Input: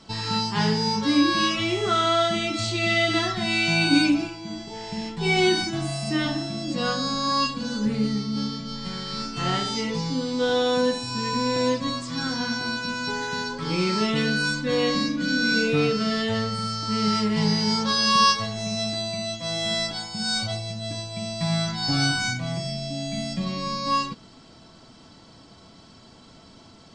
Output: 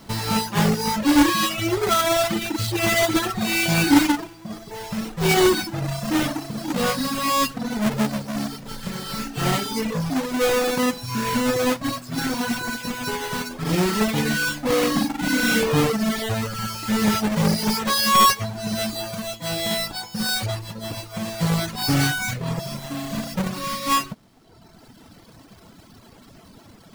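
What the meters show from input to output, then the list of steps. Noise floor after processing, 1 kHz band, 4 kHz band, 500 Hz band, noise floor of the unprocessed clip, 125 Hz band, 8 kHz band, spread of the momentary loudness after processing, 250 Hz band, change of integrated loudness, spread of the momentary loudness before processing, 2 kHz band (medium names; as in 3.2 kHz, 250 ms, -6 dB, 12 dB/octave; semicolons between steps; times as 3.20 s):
-49 dBFS, +2.5 dB, -1.5 dB, +2.0 dB, -50 dBFS, +2.5 dB, +6.0 dB, 12 LU, +2.5 dB, +2.0 dB, 10 LU, +1.0 dB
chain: square wave that keeps the level; reverb removal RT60 1.4 s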